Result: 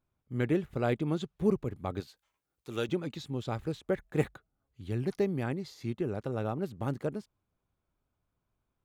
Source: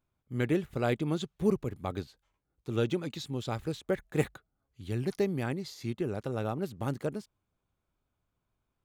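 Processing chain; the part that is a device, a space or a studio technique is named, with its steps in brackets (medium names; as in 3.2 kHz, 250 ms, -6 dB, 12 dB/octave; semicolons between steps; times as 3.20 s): 2.00–2.89 s: tilt EQ +3 dB/octave; behind a face mask (treble shelf 3.1 kHz -7 dB)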